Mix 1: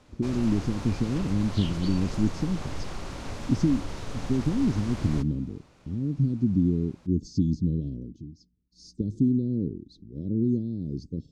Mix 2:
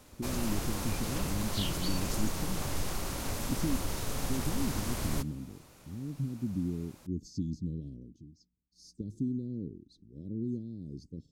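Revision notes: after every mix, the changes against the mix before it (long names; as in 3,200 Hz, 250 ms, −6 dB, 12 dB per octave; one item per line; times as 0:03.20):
speech −10.5 dB
master: remove high-frequency loss of the air 98 metres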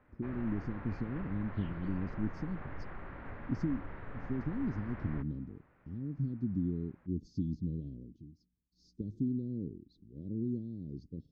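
background: add transistor ladder low-pass 2,100 Hz, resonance 50%
master: add high-frequency loss of the air 250 metres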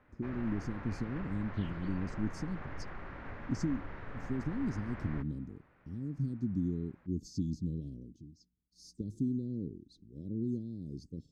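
master: remove high-frequency loss of the air 250 metres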